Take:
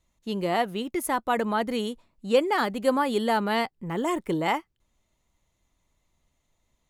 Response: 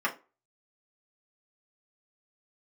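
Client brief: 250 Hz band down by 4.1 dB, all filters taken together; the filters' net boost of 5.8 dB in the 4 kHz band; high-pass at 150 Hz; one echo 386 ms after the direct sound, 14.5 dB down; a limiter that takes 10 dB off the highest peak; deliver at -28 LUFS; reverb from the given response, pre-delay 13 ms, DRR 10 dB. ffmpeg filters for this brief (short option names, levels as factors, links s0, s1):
-filter_complex "[0:a]highpass=150,equalizer=f=250:t=o:g=-4.5,equalizer=f=4000:t=o:g=8,alimiter=limit=0.112:level=0:latency=1,aecho=1:1:386:0.188,asplit=2[s0][s1];[1:a]atrim=start_sample=2205,adelay=13[s2];[s1][s2]afir=irnorm=-1:irlink=0,volume=0.0944[s3];[s0][s3]amix=inputs=2:normalize=0,volume=1.26"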